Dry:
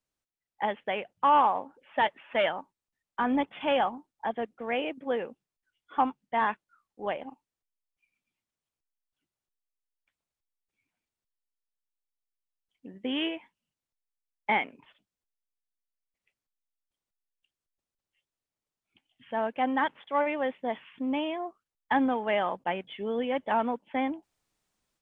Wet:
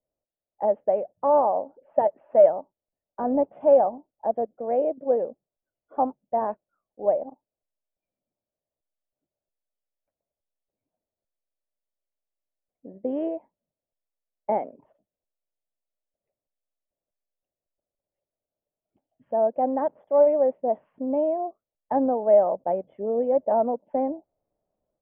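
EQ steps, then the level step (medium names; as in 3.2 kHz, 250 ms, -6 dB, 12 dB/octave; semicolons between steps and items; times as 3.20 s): resonant low-pass 610 Hz, resonance Q 4.9; distance through air 190 m; 0.0 dB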